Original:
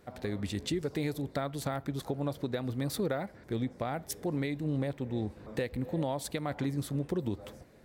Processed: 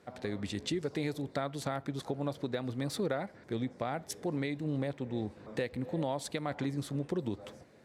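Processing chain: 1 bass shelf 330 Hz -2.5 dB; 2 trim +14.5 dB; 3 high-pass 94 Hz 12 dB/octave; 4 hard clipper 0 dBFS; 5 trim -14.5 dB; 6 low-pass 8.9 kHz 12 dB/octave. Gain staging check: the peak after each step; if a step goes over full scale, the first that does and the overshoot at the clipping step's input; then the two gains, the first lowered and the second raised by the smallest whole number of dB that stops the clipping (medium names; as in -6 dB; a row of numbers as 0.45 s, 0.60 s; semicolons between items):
-20.5 dBFS, -6.0 dBFS, -5.0 dBFS, -5.0 dBFS, -19.5 dBFS, -19.5 dBFS; nothing clips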